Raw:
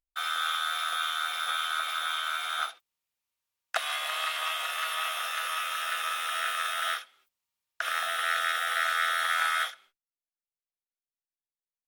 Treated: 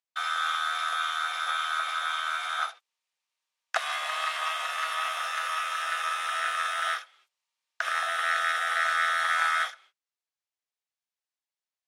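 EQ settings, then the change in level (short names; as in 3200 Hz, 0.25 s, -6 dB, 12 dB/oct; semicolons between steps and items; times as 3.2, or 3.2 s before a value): notch 1400 Hz, Q 19; dynamic EQ 3200 Hz, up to -7 dB, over -46 dBFS, Q 1.2; BPF 620–7100 Hz; +4.5 dB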